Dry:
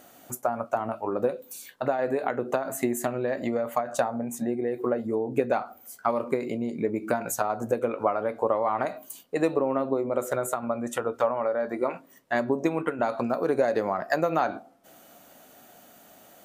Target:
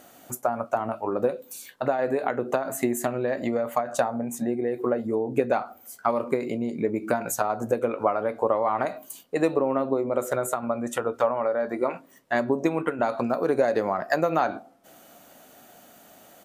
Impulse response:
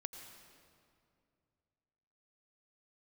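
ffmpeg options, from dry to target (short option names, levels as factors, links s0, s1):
-af "aresample=32000,aresample=44100,volume=1.19"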